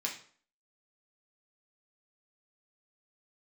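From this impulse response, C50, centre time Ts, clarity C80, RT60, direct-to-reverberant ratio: 8.0 dB, 22 ms, 12.5 dB, 0.50 s, −2.0 dB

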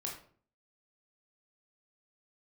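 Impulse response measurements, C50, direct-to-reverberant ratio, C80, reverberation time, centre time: 6.0 dB, −1.5 dB, 10.0 dB, 0.50 s, 30 ms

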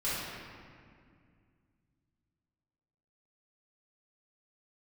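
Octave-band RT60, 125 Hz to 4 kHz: 3.4, 3.0, 2.3, 2.0, 1.9, 1.3 seconds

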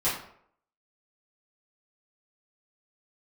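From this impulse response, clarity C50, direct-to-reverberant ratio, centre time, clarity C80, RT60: 4.5 dB, −12.0 dB, 41 ms, 8.5 dB, 0.65 s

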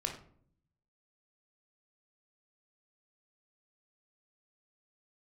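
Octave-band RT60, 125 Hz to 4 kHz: 1.1, 0.95, 0.65, 0.50, 0.40, 0.30 seconds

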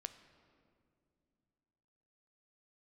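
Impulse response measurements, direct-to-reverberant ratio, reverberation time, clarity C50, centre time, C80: 10.0 dB, 2.6 s, 12.0 dB, 13 ms, 13.0 dB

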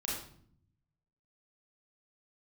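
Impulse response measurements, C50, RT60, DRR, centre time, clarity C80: 1.5 dB, 0.60 s, −5.5 dB, 52 ms, 5.5 dB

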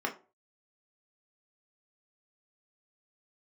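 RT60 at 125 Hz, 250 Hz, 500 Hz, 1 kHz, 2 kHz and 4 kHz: 0.35, 0.35, 0.40, 0.35, 0.25, 0.20 seconds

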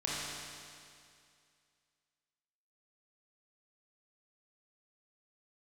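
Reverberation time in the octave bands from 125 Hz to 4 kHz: 2.3, 2.3, 2.3, 2.3, 2.3, 2.3 seconds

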